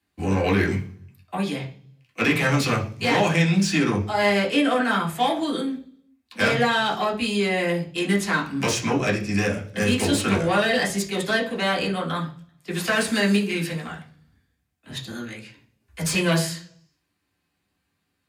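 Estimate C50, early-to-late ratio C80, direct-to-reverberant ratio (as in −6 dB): 11.0 dB, 16.0 dB, −3.0 dB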